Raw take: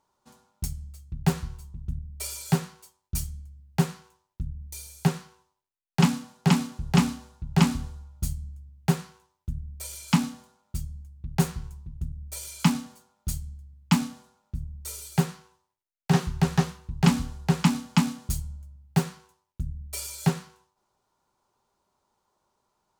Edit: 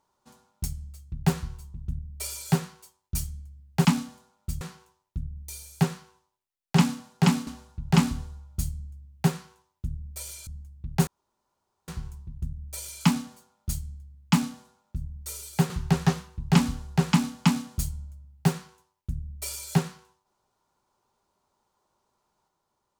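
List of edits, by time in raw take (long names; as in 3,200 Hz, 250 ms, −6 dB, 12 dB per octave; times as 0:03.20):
0:06.71–0:07.11: remove
0:10.11–0:10.87: move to 0:03.85
0:11.47: splice in room tone 0.81 s
0:15.29–0:16.21: remove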